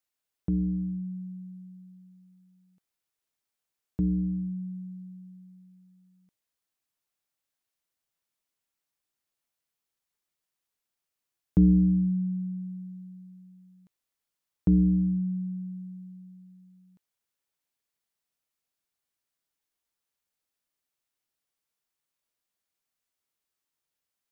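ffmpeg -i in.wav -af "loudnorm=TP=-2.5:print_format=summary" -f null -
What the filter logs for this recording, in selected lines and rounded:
Input Integrated:    -27.6 LUFS
Input True Peak:     -13.0 dBTP
Input LRA:             7.9 LU
Input Threshold:     -40.6 LUFS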